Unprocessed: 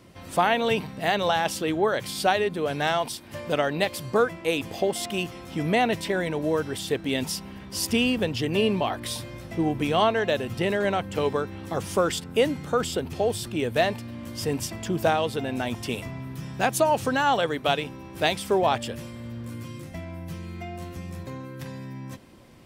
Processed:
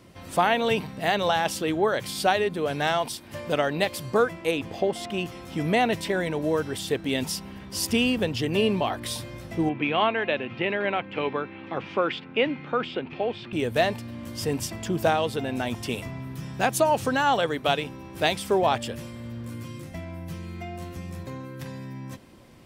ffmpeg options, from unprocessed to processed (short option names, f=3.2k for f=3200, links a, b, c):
-filter_complex "[0:a]asettb=1/sr,asplit=3[a][b][c];[a]atrim=end=4.514[d];[b]atrim=start=4.51:end=5.26,asetpts=PTS-STARTPTS,afade=t=in:d=0.004:c=qsin,afade=t=out:st=0.746:d=0.004:c=qsin,lowpass=f=3k:p=1[e];[c]atrim=start=5.256[f];[d][e]acrossfade=d=0.004:c1=hsin:c2=qsin[g];[g][f]acrossfade=d=0.004:c1=qsin:c2=hsin,asettb=1/sr,asplit=3[h][i][j];[h]atrim=end=9.694[k];[i]atrim=start=9.69:end=13.53,asetpts=PTS-STARTPTS,afade=t=in:d=0.004:c=qsin,afade=t=out:st=3.836:d=0.004:c=qsin,highpass=f=140:w=0.5412,highpass=f=140:w=1.3066,equalizer=f=180:t=q:w=4:g=-8,equalizer=f=440:t=q:w=4:g=-4,equalizer=f=650:t=q:w=4:g=-3,equalizer=f=2.4k:t=q:w=4:g=8,lowpass=f=3.3k:w=0.5412,lowpass=f=3.3k:w=1.3066[l];[j]atrim=start=13.526[m];[k][l]acrossfade=d=0.004:c1=hsin:c2=qsin[n];[n][m]acrossfade=d=0.004:c1=qsin:c2=hsin"